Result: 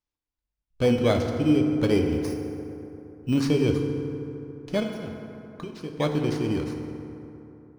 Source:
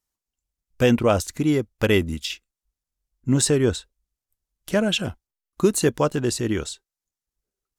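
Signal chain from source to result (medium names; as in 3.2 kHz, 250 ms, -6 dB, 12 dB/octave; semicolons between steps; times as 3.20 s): bit-reversed sample order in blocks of 16 samples; 2.12–3.40 s: treble shelf 9.7 kHz +11.5 dB; 4.83–5.99 s: compression 12:1, threshold -29 dBFS, peak gain reduction 17 dB; distance through air 120 m; FDN reverb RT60 3.2 s, high-frequency decay 0.45×, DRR 3 dB; trim -4 dB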